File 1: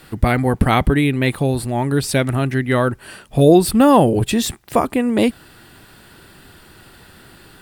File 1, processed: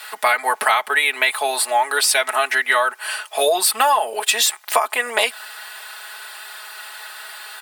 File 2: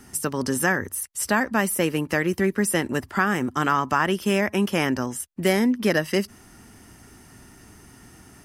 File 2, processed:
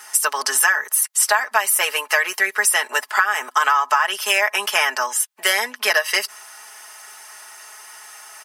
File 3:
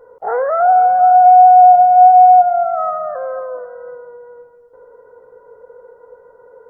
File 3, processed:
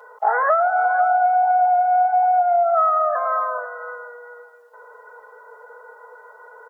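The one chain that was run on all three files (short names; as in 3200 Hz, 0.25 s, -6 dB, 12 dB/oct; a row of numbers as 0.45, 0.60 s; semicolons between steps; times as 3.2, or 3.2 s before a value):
HPF 750 Hz 24 dB/oct; comb 4.7 ms, depth 81%; compressor 12:1, threshold -23 dBFS; match loudness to -18 LUFS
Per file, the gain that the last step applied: +10.0, +10.5, +8.5 dB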